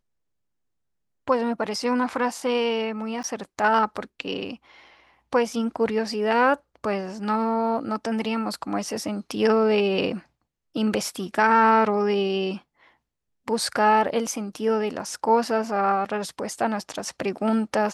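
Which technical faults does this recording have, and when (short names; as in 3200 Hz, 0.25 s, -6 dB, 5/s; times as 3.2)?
3.23–3.24 gap 9.8 ms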